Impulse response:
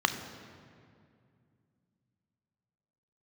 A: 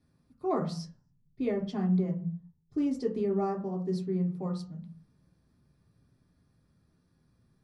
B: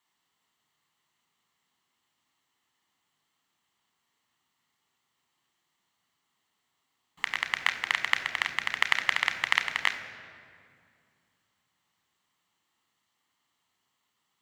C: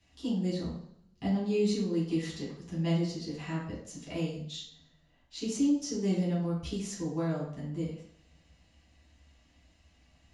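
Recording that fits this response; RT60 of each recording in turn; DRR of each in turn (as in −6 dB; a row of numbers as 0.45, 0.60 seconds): B; 0.45, 2.3, 0.60 seconds; −1.5, 7.5, −7.5 decibels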